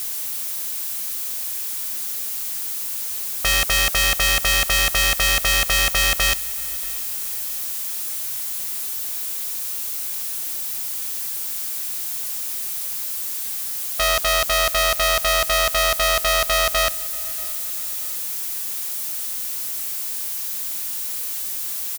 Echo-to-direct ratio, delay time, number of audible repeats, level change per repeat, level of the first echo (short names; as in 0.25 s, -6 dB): -22.5 dB, 0.635 s, 2, -7.5 dB, -23.5 dB